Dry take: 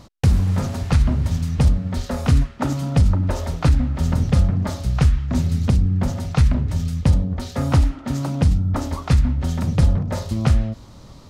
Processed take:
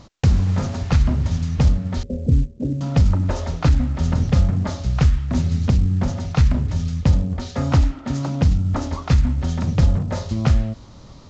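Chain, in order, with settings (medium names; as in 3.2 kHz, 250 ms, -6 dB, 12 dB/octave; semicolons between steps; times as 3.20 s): 2.03–2.81 s: elliptic low-pass 510 Hz, stop band 60 dB; µ-law 128 kbps 16 kHz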